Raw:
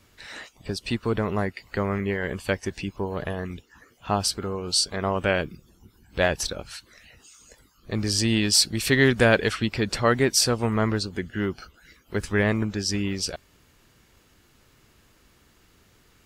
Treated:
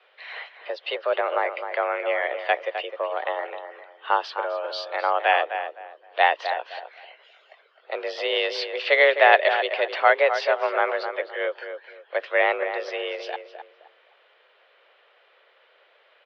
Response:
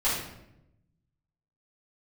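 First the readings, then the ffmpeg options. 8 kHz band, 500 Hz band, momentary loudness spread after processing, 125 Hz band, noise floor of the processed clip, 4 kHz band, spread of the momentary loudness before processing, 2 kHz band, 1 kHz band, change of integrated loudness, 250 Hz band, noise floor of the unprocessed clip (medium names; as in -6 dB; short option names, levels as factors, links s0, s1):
under -25 dB, +3.0 dB, 18 LU, under -40 dB, -60 dBFS, -4.0 dB, 17 LU, +4.5 dB, +9.0 dB, +1.0 dB, under -15 dB, -60 dBFS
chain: -filter_complex "[0:a]asplit=2[s0][s1];[s1]adelay=258,lowpass=f=1800:p=1,volume=0.398,asplit=2[s2][s3];[s3]adelay=258,lowpass=f=1800:p=1,volume=0.27,asplit=2[s4][s5];[s5]adelay=258,lowpass=f=1800:p=1,volume=0.27[s6];[s0][s2][s4][s6]amix=inputs=4:normalize=0,highpass=f=330:t=q:w=0.5412,highpass=f=330:t=q:w=1.307,lowpass=f=3400:t=q:w=0.5176,lowpass=f=3400:t=q:w=0.7071,lowpass=f=3400:t=q:w=1.932,afreqshift=160,volume=1.58"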